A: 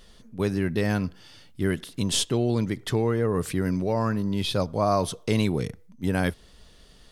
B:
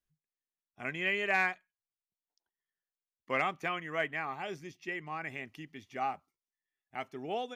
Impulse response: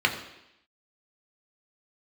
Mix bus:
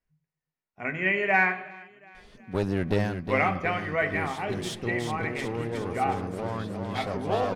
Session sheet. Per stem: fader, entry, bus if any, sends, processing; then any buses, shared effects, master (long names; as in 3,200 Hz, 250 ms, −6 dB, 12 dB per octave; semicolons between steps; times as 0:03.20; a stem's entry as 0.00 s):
−1.0 dB, 2.15 s, no send, echo send −7.5 dB, parametric band 700 Hz +4 dB 1.7 octaves; asymmetric clip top −30.5 dBFS; automatic ducking −18 dB, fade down 0.25 s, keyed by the second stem
+2.5 dB, 0.00 s, send −12.5 dB, echo send −19.5 dB, spectral tilt −1.5 dB per octave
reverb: on, RT60 0.85 s, pre-delay 3 ms
echo: repeating echo 365 ms, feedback 57%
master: high-shelf EQ 8,100 Hz −9.5 dB